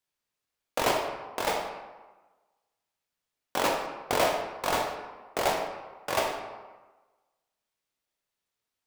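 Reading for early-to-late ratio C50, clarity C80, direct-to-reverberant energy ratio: 5.0 dB, 6.5 dB, 1.5 dB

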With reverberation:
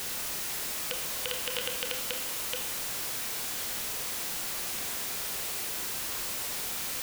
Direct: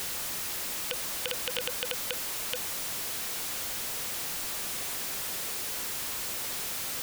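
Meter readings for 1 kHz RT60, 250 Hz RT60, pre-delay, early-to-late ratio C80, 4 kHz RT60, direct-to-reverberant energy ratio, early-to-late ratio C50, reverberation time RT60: 0.95 s, 1.0 s, 25 ms, 8.5 dB, 0.95 s, 3.5 dB, 6.0 dB, 0.95 s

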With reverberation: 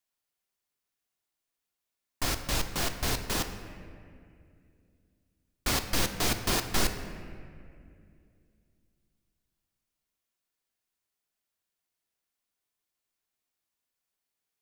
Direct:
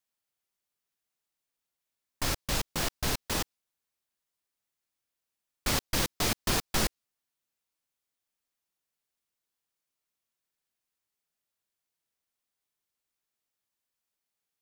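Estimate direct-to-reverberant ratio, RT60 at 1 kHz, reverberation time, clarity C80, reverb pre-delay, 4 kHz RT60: 6.5 dB, 2.0 s, 2.4 s, 10.0 dB, 3 ms, 1.5 s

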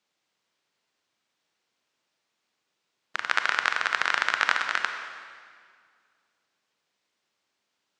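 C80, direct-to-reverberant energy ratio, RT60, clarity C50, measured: 7.5 dB, 5.5 dB, 2.0 s, 6.5 dB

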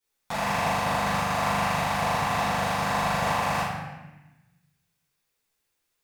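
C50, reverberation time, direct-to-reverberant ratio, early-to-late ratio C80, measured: −1.5 dB, 1.1 s, −14.0 dB, 1.5 dB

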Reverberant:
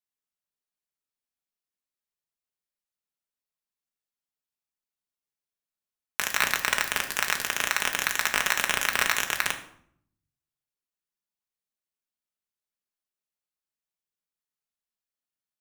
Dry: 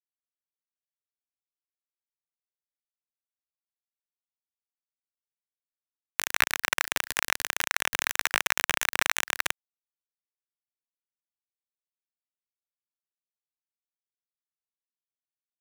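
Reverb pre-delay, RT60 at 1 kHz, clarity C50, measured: 5 ms, 0.65 s, 10.5 dB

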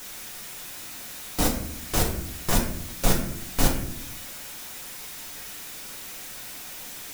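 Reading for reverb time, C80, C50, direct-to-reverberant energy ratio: 0.70 s, 9.0 dB, 6.0 dB, −2.0 dB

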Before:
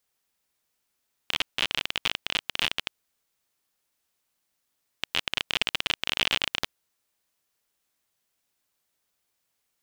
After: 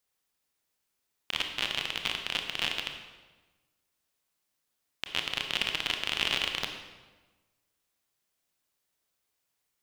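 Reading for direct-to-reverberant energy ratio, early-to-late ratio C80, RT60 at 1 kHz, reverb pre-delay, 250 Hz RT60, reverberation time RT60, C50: 4.0 dB, 7.5 dB, 1.2 s, 23 ms, 1.4 s, 1.3 s, 6.0 dB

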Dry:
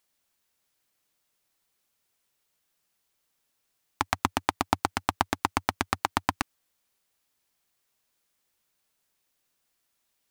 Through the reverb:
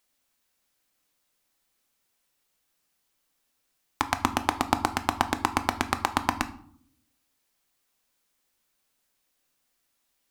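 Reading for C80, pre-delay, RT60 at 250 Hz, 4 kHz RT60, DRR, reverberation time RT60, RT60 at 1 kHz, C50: 18.5 dB, 3 ms, 1.0 s, 0.40 s, 9.0 dB, 0.60 s, 0.60 s, 15.0 dB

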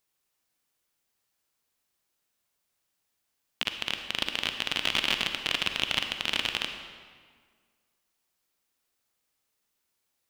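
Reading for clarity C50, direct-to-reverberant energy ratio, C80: 6.5 dB, 6.0 dB, 8.0 dB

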